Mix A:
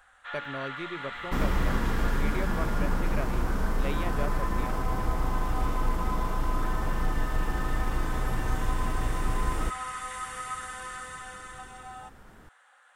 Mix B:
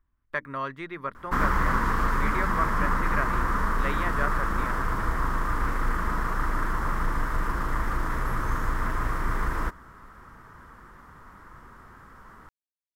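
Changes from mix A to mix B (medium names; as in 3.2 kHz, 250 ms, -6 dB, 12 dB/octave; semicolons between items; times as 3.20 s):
first sound: muted; master: add high-order bell 1.4 kHz +13 dB 1.2 oct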